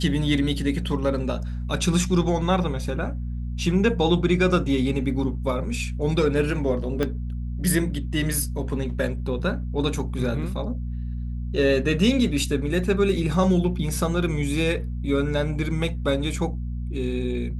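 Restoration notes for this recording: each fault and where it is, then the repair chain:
hum 60 Hz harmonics 4 -29 dBFS
7.03 pop -12 dBFS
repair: de-click; de-hum 60 Hz, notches 4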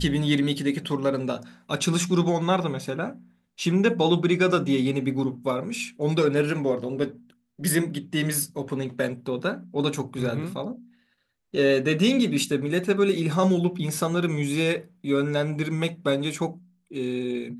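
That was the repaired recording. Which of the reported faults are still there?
7.03 pop

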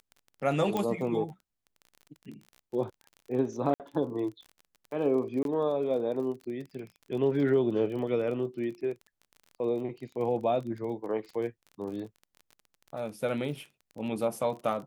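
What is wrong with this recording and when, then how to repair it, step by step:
crackle 29/s -39 dBFS
0.77 pop -17 dBFS
3.74–3.8 gap 58 ms
5.43–5.45 gap 22 ms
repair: de-click; interpolate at 3.74, 58 ms; interpolate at 5.43, 22 ms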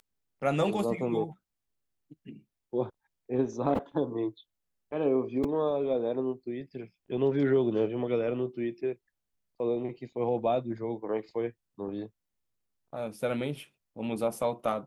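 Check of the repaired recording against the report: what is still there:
none

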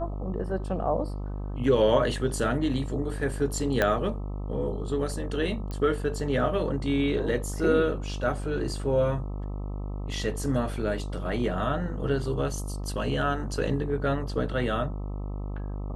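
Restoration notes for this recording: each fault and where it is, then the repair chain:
buzz 50 Hz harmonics 26 -33 dBFS
3.82 pop -10 dBFS
5.71 pop -22 dBFS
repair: de-click; de-hum 50 Hz, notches 26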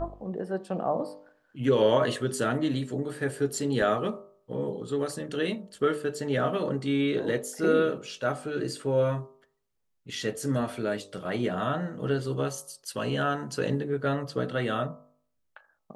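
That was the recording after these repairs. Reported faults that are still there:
3.82 pop

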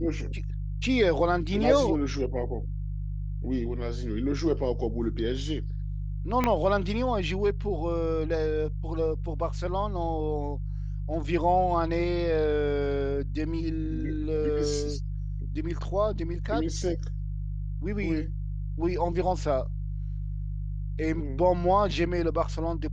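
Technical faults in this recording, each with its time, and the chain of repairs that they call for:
hum 50 Hz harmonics 3 -32 dBFS
6.44 pop -11 dBFS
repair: de-click; de-hum 50 Hz, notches 3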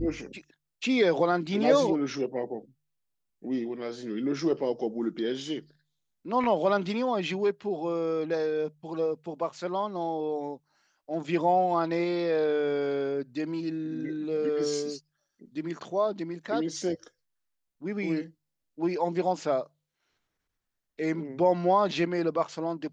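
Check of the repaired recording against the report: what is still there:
6.44 pop

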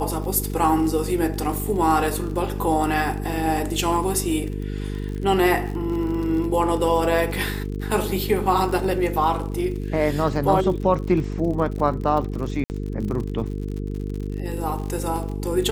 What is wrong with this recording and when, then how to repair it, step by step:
buzz 50 Hz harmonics 9 -28 dBFS
crackle 53/s -30 dBFS
12.64–12.7 gap 59 ms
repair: de-click; de-hum 50 Hz, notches 9; interpolate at 12.64, 59 ms

